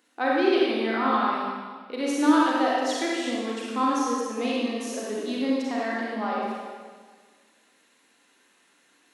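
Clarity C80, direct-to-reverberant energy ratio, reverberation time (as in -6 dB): -0.5 dB, -5.5 dB, 1.6 s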